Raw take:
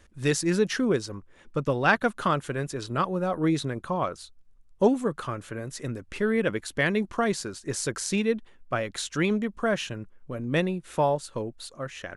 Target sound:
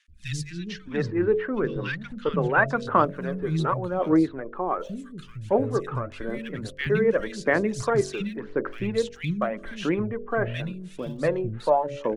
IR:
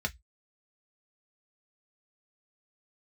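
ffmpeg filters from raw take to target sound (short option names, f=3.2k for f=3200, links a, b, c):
-filter_complex "[0:a]aemphasis=mode=reproduction:type=75fm,bandreject=f=47.48:t=h:w=4,bandreject=f=94.96:t=h:w=4,bandreject=f=142.44:t=h:w=4,bandreject=f=189.92:t=h:w=4,bandreject=f=237.4:t=h:w=4,bandreject=f=284.88:t=h:w=4,bandreject=f=332.36:t=h:w=4,bandreject=f=379.84:t=h:w=4,bandreject=f=427.32:t=h:w=4,bandreject=f=474.8:t=h:w=4,bandreject=f=522.28:t=h:w=4,bandreject=f=569.76:t=h:w=4,bandreject=f=617.24:t=h:w=4,bandreject=f=664.72:t=h:w=4,aphaser=in_gain=1:out_gain=1:delay=2.6:decay=0.5:speed=0.88:type=sinusoidal,asettb=1/sr,asplit=3[a][b][c];[a]atrim=end=0.524[d];[b]atrim=start=0.52:end=2.73,asetpts=PTS-STARTPTS,afade=t=in:d=0.004:c=qsin,afade=t=out:st=2.206:d=0.004:c=qsin,lowpass=5k[e];[c]atrim=start=2.726[f];[d][e]acrossfade=d=0.004:c1=hsin:c2=qsin[g];[g][f]acrossfade=d=0.004:c1=qsin:c2=hsin,acrossover=split=200|2200[h][i][j];[h]adelay=80[k];[i]adelay=690[l];[k][l][j]amix=inputs=3:normalize=0,volume=1dB"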